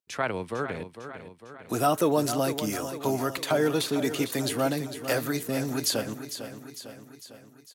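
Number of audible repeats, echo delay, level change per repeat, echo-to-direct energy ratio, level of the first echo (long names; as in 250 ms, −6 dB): 5, 452 ms, −5.0 dB, −9.0 dB, −10.5 dB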